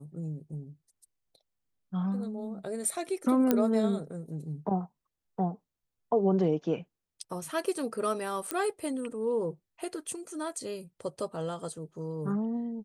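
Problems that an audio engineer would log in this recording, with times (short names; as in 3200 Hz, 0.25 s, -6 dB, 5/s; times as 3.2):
3.51 pop -11 dBFS
8.51 pop -14 dBFS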